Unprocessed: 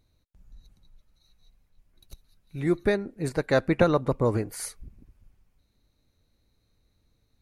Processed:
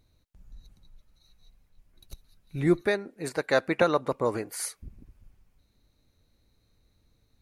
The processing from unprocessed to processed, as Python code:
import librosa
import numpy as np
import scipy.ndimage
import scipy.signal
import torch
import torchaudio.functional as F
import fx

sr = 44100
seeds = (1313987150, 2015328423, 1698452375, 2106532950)

y = fx.highpass(x, sr, hz=570.0, slope=6, at=(2.81, 4.83))
y = y * 10.0 ** (2.0 / 20.0)